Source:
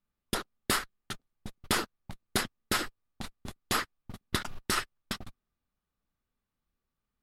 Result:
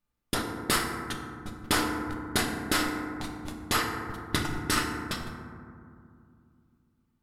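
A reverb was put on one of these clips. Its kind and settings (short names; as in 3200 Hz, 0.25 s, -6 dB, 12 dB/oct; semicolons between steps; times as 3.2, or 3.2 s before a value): FDN reverb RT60 2.3 s, low-frequency decay 1.5×, high-frequency decay 0.3×, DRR 0.5 dB; gain +1.5 dB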